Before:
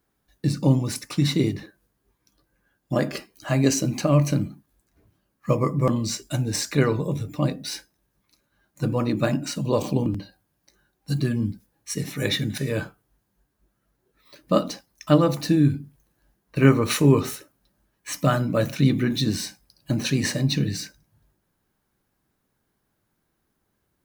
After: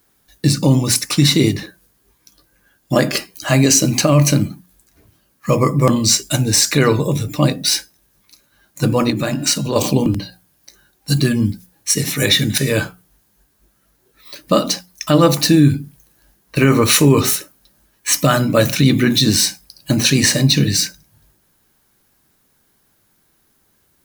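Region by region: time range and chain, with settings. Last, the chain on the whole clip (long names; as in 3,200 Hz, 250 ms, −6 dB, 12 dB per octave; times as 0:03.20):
0:09.10–0:09.76: hum removal 352.2 Hz, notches 21 + downward compressor 4 to 1, threshold −25 dBFS
whole clip: high-shelf EQ 2,400 Hz +9.5 dB; mains-hum notches 60/120/180 Hz; boost into a limiter +9.5 dB; level −1 dB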